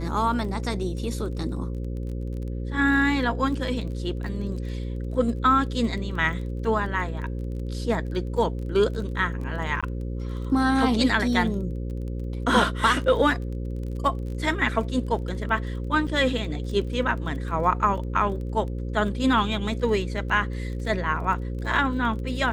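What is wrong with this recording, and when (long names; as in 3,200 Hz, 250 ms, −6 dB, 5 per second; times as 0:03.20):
mains buzz 60 Hz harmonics 9 −30 dBFS
surface crackle 21 per second −34 dBFS
0:09.81–0:09.83: drop-out 16 ms
0:16.07–0:16.08: drop-out 5.7 ms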